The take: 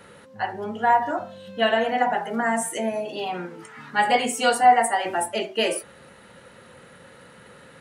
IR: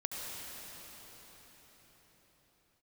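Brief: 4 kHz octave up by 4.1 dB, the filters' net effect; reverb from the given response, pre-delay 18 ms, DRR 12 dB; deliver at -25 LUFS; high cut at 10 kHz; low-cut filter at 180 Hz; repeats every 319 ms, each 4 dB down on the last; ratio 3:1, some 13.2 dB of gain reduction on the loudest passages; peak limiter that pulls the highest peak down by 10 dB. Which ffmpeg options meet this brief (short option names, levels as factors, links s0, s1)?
-filter_complex "[0:a]highpass=180,lowpass=10000,equalizer=f=4000:t=o:g=6.5,acompressor=threshold=0.0398:ratio=3,alimiter=level_in=1.19:limit=0.0631:level=0:latency=1,volume=0.841,aecho=1:1:319|638|957|1276|1595|1914|2233|2552|2871:0.631|0.398|0.25|0.158|0.0994|0.0626|0.0394|0.0249|0.0157,asplit=2[s0][s1];[1:a]atrim=start_sample=2205,adelay=18[s2];[s1][s2]afir=irnorm=-1:irlink=0,volume=0.178[s3];[s0][s3]amix=inputs=2:normalize=0,volume=2.51"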